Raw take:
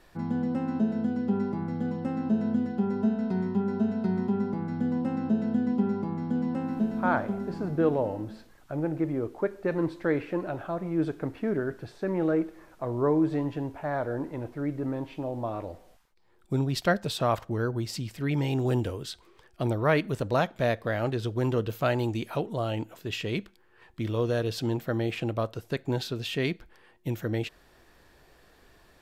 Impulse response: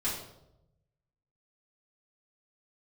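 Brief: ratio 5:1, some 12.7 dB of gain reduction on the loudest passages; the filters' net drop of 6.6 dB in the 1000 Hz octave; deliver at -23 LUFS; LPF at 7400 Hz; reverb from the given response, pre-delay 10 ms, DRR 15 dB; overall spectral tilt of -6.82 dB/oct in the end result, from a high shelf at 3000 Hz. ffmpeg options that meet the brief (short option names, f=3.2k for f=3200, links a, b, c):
-filter_complex "[0:a]lowpass=7.4k,equalizer=f=1k:t=o:g=-9,highshelf=f=3k:g=-6,acompressor=threshold=-36dB:ratio=5,asplit=2[a][b];[1:a]atrim=start_sample=2205,adelay=10[c];[b][c]afir=irnorm=-1:irlink=0,volume=-21dB[d];[a][d]amix=inputs=2:normalize=0,volume=16.5dB"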